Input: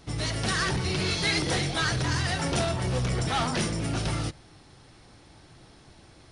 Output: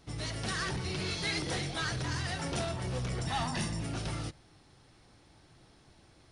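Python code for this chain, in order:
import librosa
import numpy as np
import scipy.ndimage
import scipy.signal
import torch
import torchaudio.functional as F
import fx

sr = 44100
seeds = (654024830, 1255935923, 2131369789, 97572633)

y = fx.comb(x, sr, ms=1.1, depth=0.51, at=(3.26, 3.83))
y = y * librosa.db_to_amplitude(-7.5)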